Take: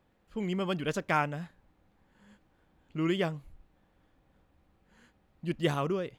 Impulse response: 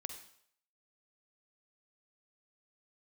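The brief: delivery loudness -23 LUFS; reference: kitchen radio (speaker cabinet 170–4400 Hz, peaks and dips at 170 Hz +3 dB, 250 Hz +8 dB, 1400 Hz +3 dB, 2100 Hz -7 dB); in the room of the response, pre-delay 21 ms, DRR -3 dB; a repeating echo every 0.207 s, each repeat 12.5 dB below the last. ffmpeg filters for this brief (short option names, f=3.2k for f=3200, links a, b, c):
-filter_complex "[0:a]aecho=1:1:207|414|621:0.237|0.0569|0.0137,asplit=2[a][b];[1:a]atrim=start_sample=2205,adelay=21[c];[b][c]afir=irnorm=-1:irlink=0,volume=5.5dB[d];[a][d]amix=inputs=2:normalize=0,highpass=170,equalizer=f=170:t=q:w=4:g=3,equalizer=f=250:t=q:w=4:g=8,equalizer=f=1.4k:t=q:w=4:g=3,equalizer=f=2.1k:t=q:w=4:g=-7,lowpass=f=4.4k:w=0.5412,lowpass=f=4.4k:w=1.3066,volume=4dB"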